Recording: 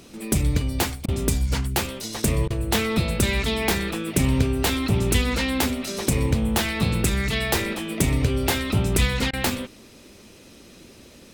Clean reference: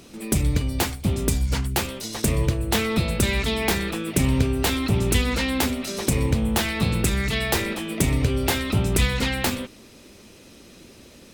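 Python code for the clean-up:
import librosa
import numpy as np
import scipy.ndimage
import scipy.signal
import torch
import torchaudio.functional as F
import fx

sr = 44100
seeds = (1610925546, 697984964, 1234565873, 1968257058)

y = fx.fix_interpolate(x, sr, at_s=(1.06, 2.48, 9.31), length_ms=22.0)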